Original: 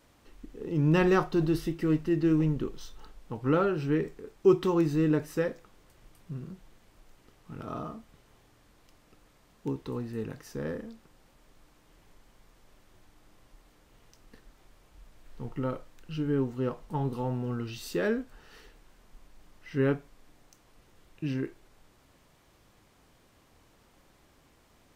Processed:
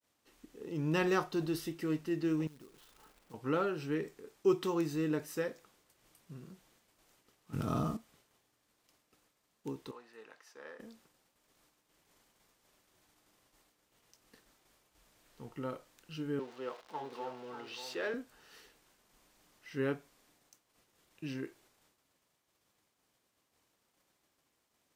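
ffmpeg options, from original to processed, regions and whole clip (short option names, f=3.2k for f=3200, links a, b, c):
-filter_complex "[0:a]asettb=1/sr,asplit=3[a][b][c];[a]atrim=end=2.474[d];[b]atrim=start=2.47:end=3.34,asetpts=PTS-STARTPTS,afade=t=in:d=0.004:c=qsin,afade=t=out:st=0.866:d=0.004:c=qsin,lowpass=f=2.8k:w=0.5412,lowpass=f=2.8k:w=1.3066,acompressor=threshold=-42dB:ratio=12:attack=3.2:release=140:knee=1:detection=peak,acrusher=bits=4:mode=log:mix=0:aa=0.000001[e];[c]atrim=start=3.336[f];[d][e]acrossfade=d=0.004:c1=hsin:c2=qsin[g];[g][f]acrossfade=d=0.004:c1=qsin:c2=hsin,asettb=1/sr,asplit=3[h][i][j];[h]atrim=end=7.534[k];[i]atrim=start=7.53:end=7.97,asetpts=PTS-STARTPTS,afade=t=in:d=0.004:c=qsin,afade=t=out:st=0.436:d=0.004:c=qsin,bass=f=250:g=15,treble=f=4k:g=5,acontrast=51[l];[j]atrim=start=7.966[m];[k][l]acrossfade=d=0.004:c1=hsin:c2=qsin[n];[n][m]acrossfade=d=0.004:c1=qsin:c2=hsin,asettb=1/sr,asplit=3[o][p][q];[o]atrim=end=9.914[r];[p]atrim=start=9.91:end=10.8,asetpts=PTS-STARTPTS,afade=t=in:d=0.004:c=qsin,afade=t=out:st=0.886:d=0.004:c=qsin,highpass=790,aemphasis=mode=reproduction:type=75fm[s];[q]atrim=start=10.796[t];[r][s]acrossfade=d=0.004:c1=hsin:c2=qsin[u];[u][t]acrossfade=d=0.004:c1=qsin:c2=hsin,asettb=1/sr,asplit=3[v][w][x];[v]atrim=end=16.394[y];[w]atrim=start=16.39:end=18.14,asetpts=PTS-STARTPTS,afade=t=in:d=0.004:c=qsin,afade=t=out:st=1.746:d=0.004:c=qsin,aeval=exprs='val(0)+0.5*0.00794*sgn(val(0))':c=same,acrossover=split=350 5000:gain=0.1 1 0.126[z][aa][ab];[z][aa][ab]amix=inputs=3:normalize=0,aecho=1:1:591:0.335,atrim=end_sample=77175[ac];[x]atrim=start=18.136[ad];[y][ac]acrossfade=d=0.004:c1=hsin:c2=qsin[ae];[ae][ad]acrossfade=d=0.004:c1=qsin:c2=hsin,agate=range=-33dB:threshold=-54dB:ratio=3:detection=peak,highpass=f=220:p=1,highshelf=f=3.6k:g=8,volume=-6dB"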